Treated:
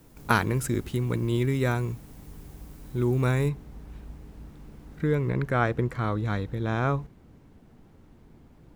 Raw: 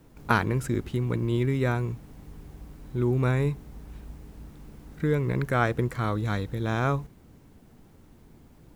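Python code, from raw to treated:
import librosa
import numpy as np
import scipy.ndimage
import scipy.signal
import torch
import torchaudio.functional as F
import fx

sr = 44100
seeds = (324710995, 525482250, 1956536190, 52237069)

y = fx.high_shelf(x, sr, hz=5400.0, db=fx.steps((0.0, 9.0), (3.48, -5.0), (5.29, -10.5)))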